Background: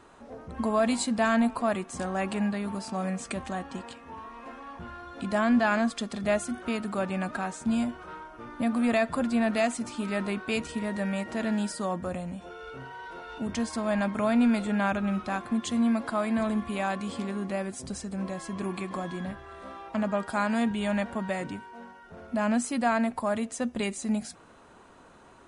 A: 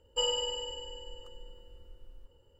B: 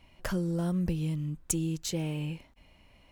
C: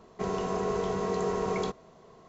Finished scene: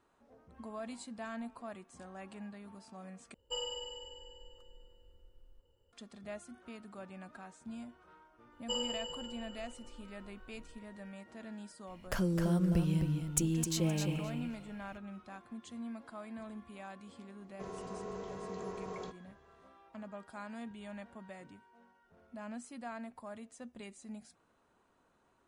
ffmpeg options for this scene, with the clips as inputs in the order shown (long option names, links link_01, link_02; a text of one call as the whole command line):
ffmpeg -i bed.wav -i cue0.wav -i cue1.wav -i cue2.wav -filter_complex "[1:a]asplit=2[link_01][link_02];[0:a]volume=-18.5dB[link_03];[2:a]aecho=1:1:260|520|780:0.501|0.0802|0.0128[link_04];[link_03]asplit=2[link_05][link_06];[link_05]atrim=end=3.344[link_07];[link_01]atrim=end=2.59,asetpts=PTS-STARTPTS,volume=-9dB[link_08];[link_06]atrim=start=5.926[link_09];[link_02]atrim=end=2.59,asetpts=PTS-STARTPTS,volume=-6.5dB,afade=type=in:duration=0.004:curve=hsin,afade=type=out:start_time=2.586:duration=0.004:curve=hsin,adelay=8520[link_10];[link_04]atrim=end=3.11,asetpts=PTS-STARTPTS,volume=-1.5dB,afade=type=in:duration=0.004:curve=hsin,afade=type=out:start_time=3.106:duration=0.004:curve=hsin,adelay=11870[link_11];[3:a]atrim=end=2.28,asetpts=PTS-STARTPTS,volume=-13.5dB,afade=type=in:duration=0.004:curve=hsin,afade=type=out:start_time=2.276:duration=0.004:curve=hsin,adelay=17400[link_12];[link_07][link_08]acrossfade=duration=0.004:curve1=hsin:curve2=hsin[link_13];[link_13][link_09]acrossfade=duration=0.004:curve1=hsin:curve2=hsin[link_14];[link_14][link_10][link_11][link_12]amix=inputs=4:normalize=0" out.wav